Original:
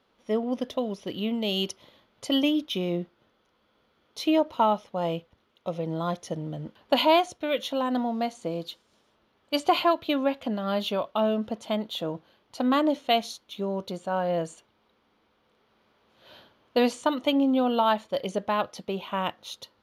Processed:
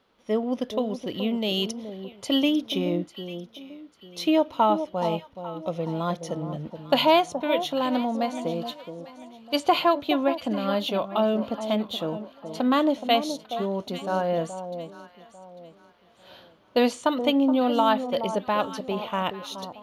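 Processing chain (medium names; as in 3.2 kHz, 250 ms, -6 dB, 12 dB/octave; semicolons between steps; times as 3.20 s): echo whose repeats swap between lows and highs 423 ms, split 1 kHz, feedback 53%, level -9 dB; trim +1.5 dB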